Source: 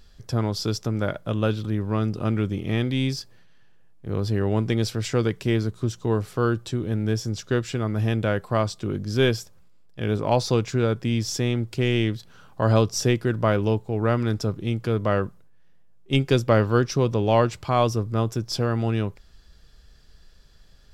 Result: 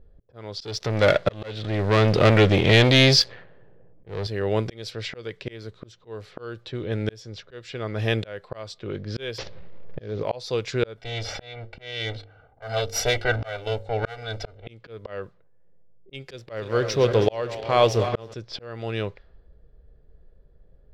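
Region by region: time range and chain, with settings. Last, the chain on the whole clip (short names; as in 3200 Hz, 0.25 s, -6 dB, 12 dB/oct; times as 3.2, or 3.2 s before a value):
0.6–4.27 LPF 5800 Hz + sample leveller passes 3
9.38–10.23 CVSD 32 kbps + tilt shelf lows +6.5 dB, about 810 Hz + fast leveller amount 50%
10.97–14.67 minimum comb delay 2.6 ms + comb 1.4 ms, depth 81% + de-hum 50.84 Hz, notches 11
16.33–18.34 regenerating reverse delay 0.16 s, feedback 72%, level -13.5 dB + backlash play -37.5 dBFS
whole clip: low-pass opened by the level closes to 380 Hz, open at -19.5 dBFS; ten-band EQ 250 Hz -5 dB, 500 Hz +10 dB, 2000 Hz +8 dB, 4000 Hz +10 dB; auto swell 0.753 s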